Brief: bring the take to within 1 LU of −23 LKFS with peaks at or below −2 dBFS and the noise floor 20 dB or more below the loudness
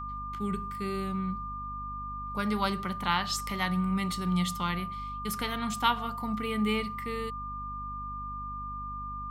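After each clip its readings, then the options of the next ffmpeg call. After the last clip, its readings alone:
mains hum 50 Hz; hum harmonics up to 250 Hz; level of the hum −40 dBFS; interfering tone 1,200 Hz; level of the tone −36 dBFS; integrated loudness −32.0 LKFS; sample peak −12.0 dBFS; target loudness −23.0 LKFS
→ -af "bandreject=frequency=50:width_type=h:width=6,bandreject=frequency=100:width_type=h:width=6,bandreject=frequency=150:width_type=h:width=6,bandreject=frequency=200:width_type=h:width=6,bandreject=frequency=250:width_type=h:width=6"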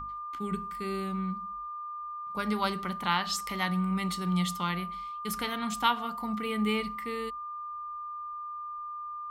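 mains hum none found; interfering tone 1,200 Hz; level of the tone −36 dBFS
→ -af "bandreject=frequency=1200:width=30"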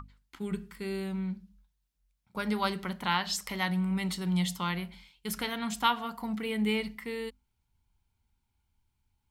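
interfering tone none found; integrated loudness −32.5 LKFS; sample peak −12.5 dBFS; target loudness −23.0 LKFS
→ -af "volume=9.5dB"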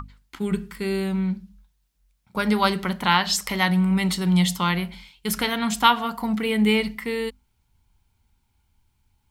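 integrated loudness −23.0 LKFS; sample peak −3.0 dBFS; background noise floor −69 dBFS

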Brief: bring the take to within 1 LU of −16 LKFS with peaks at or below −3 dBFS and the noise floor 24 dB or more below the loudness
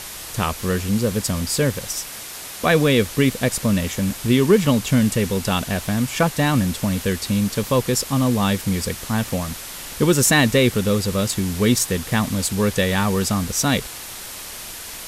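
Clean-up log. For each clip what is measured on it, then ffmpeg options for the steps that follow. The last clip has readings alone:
background noise floor −35 dBFS; target noise floor −44 dBFS; integrated loudness −20.0 LKFS; sample peak −3.5 dBFS; target loudness −16.0 LKFS
→ -af "afftdn=noise_reduction=9:noise_floor=-35"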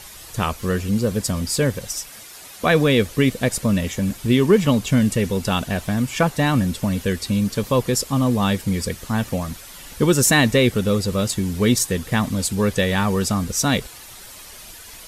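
background noise floor −41 dBFS; target noise floor −44 dBFS
→ -af "afftdn=noise_reduction=6:noise_floor=-41"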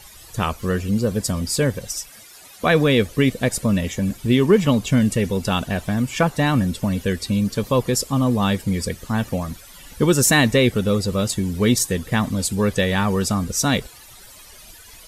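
background noise floor −44 dBFS; target noise floor −45 dBFS
→ -af "afftdn=noise_reduction=6:noise_floor=-44"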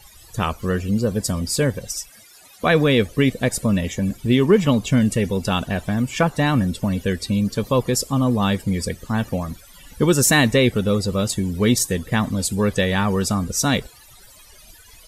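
background noise floor −47 dBFS; integrated loudness −20.5 LKFS; sample peak −3.5 dBFS; target loudness −16.0 LKFS
→ -af "volume=4.5dB,alimiter=limit=-3dB:level=0:latency=1"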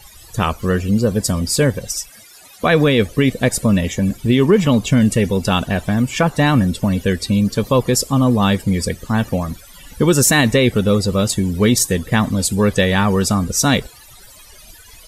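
integrated loudness −16.5 LKFS; sample peak −3.0 dBFS; background noise floor −43 dBFS

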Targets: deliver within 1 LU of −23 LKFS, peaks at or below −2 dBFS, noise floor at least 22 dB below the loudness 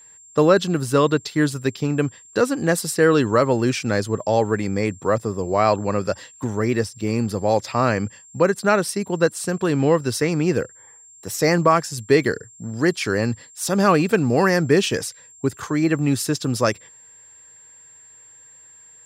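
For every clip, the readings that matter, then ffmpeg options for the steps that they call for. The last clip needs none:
interfering tone 7,400 Hz; level of the tone −45 dBFS; integrated loudness −20.5 LKFS; sample peak −4.0 dBFS; target loudness −23.0 LKFS
→ -af "bandreject=frequency=7400:width=30"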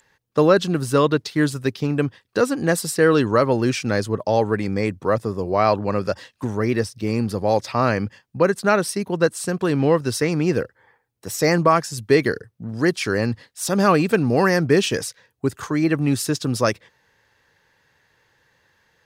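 interfering tone none found; integrated loudness −21.0 LKFS; sample peak −4.0 dBFS; target loudness −23.0 LKFS
→ -af "volume=-2dB"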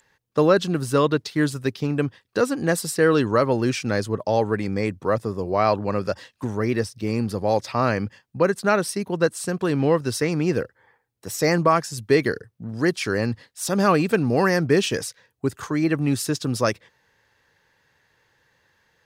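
integrated loudness −23.0 LKFS; sample peak −6.0 dBFS; background noise floor −70 dBFS

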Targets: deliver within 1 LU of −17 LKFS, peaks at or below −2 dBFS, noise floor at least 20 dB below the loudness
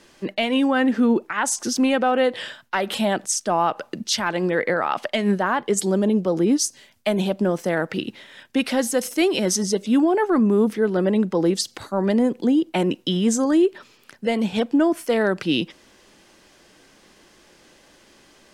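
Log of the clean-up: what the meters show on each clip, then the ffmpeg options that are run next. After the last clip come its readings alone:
integrated loudness −21.5 LKFS; sample peak −10.0 dBFS; target loudness −17.0 LKFS
→ -af "volume=4.5dB"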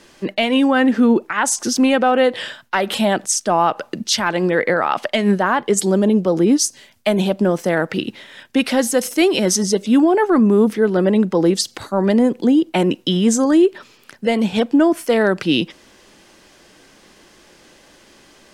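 integrated loudness −17.0 LKFS; sample peak −5.5 dBFS; background noise floor −50 dBFS

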